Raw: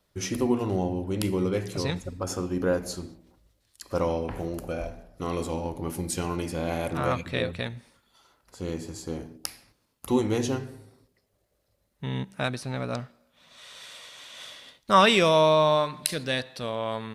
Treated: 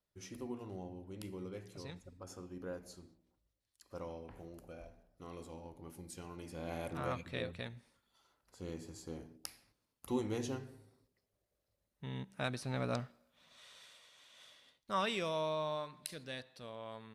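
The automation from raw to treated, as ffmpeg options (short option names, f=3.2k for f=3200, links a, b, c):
-af "volume=-5dB,afade=t=in:st=6.35:d=0.43:silence=0.446684,afade=t=in:st=12.25:d=0.63:silence=0.446684,afade=t=out:st=12.88:d=1.12:silence=0.251189"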